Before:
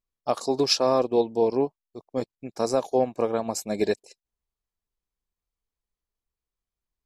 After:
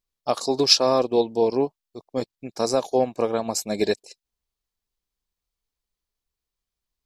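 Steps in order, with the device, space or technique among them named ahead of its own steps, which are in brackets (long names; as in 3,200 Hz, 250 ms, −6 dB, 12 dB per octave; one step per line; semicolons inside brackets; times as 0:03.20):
presence and air boost (parametric band 4,300 Hz +5.5 dB 1.3 octaves; high-shelf EQ 11,000 Hz +4 dB)
level +1.5 dB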